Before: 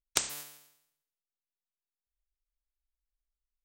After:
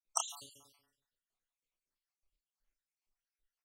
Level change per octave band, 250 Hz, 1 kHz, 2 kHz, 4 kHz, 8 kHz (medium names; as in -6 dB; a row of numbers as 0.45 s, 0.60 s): -16.5 dB, +2.0 dB, -17.5 dB, -8.0 dB, -4.5 dB